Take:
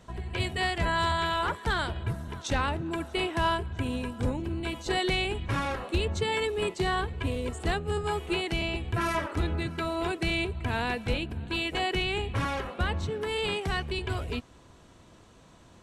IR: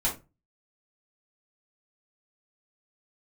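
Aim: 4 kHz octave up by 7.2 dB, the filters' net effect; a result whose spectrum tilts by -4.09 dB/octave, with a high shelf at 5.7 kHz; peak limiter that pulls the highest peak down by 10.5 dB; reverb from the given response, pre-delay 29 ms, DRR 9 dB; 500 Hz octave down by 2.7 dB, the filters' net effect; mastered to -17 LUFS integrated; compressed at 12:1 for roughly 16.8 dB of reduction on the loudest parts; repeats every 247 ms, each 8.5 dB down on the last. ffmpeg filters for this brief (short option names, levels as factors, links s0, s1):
-filter_complex "[0:a]equalizer=f=500:t=o:g=-4,equalizer=f=4000:t=o:g=8,highshelf=f=5700:g=5.5,acompressor=threshold=0.0112:ratio=12,alimiter=level_in=3.98:limit=0.0631:level=0:latency=1,volume=0.251,aecho=1:1:247|494|741|988:0.376|0.143|0.0543|0.0206,asplit=2[s0][s1];[1:a]atrim=start_sample=2205,adelay=29[s2];[s1][s2]afir=irnorm=-1:irlink=0,volume=0.141[s3];[s0][s3]amix=inputs=2:normalize=0,volume=23.7"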